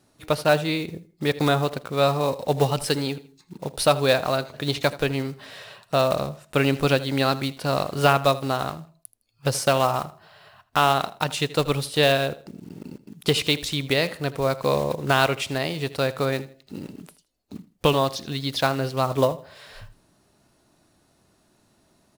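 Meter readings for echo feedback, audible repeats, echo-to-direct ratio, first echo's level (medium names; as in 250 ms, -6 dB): 27%, 2, -17.5 dB, -18.0 dB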